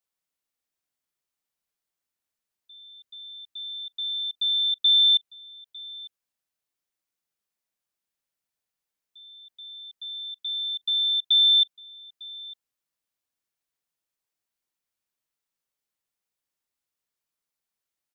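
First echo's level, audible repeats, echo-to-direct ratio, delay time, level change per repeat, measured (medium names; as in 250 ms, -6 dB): -21.5 dB, 1, -21.5 dB, 902 ms, no regular repeats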